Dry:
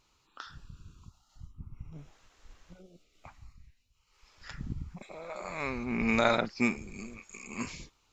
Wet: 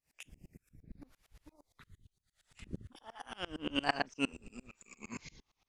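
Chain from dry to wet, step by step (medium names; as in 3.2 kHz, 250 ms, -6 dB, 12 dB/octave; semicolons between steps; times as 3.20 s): gliding tape speed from 199% -> 87%; sawtooth tremolo in dB swelling 8.7 Hz, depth 28 dB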